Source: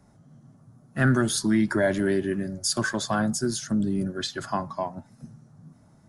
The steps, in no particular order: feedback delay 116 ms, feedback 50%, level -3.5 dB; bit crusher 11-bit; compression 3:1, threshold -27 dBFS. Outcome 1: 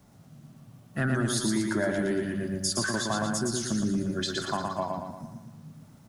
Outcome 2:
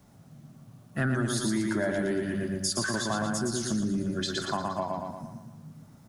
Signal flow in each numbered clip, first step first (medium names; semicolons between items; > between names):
bit crusher > compression > feedback delay; feedback delay > bit crusher > compression